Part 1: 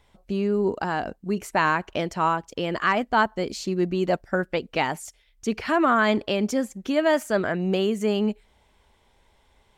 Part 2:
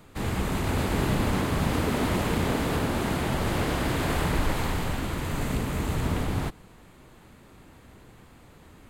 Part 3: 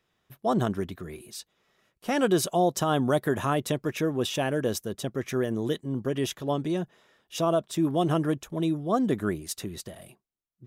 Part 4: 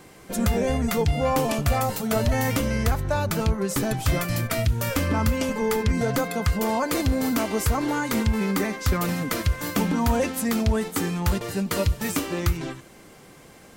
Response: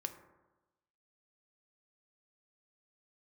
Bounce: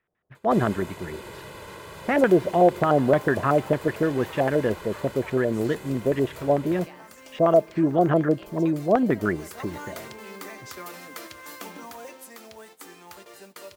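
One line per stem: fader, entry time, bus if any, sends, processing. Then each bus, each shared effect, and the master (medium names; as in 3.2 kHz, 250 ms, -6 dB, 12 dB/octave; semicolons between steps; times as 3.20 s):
-13.5 dB, 2.10 s, bus A, no send, none
+1.5 dB, 0.35 s, no bus, no send, high-pass 360 Hz 6 dB/octave; comb 2 ms, depth 77%; compression 2:1, threshold -28 dBFS, peak gain reduction 3 dB; auto duck -12 dB, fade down 1.00 s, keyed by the third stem
+1.5 dB, 0.00 s, no bus, send -18.5 dB, de-esser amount 75%; LFO low-pass square 6.7 Hz 610–1900 Hz
9.00 s -18.5 dB -> 9.67 s -7 dB -> 11.71 s -7 dB -> 12.30 s -15 dB, 1.85 s, bus A, send -6 dB, high-pass 390 Hz 12 dB/octave; modulation noise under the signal 16 dB
bus A: 0.0 dB, peaking EQ 220 Hz -6.5 dB 0.77 oct; compression, threshold -45 dBFS, peak gain reduction 15.5 dB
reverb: on, RT60 1.1 s, pre-delay 3 ms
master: gate -49 dBFS, range -9 dB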